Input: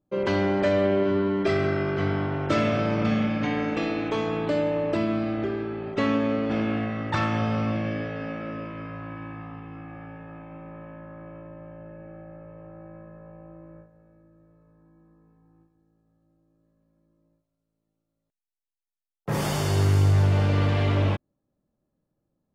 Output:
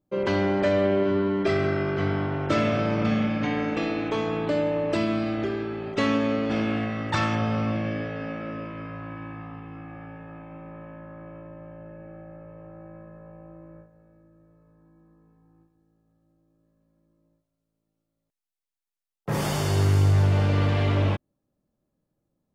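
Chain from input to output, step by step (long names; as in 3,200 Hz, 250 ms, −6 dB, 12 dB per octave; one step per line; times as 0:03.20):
0:04.90–0:07.34: high-shelf EQ 3,200 Hz → 4,800 Hz +10 dB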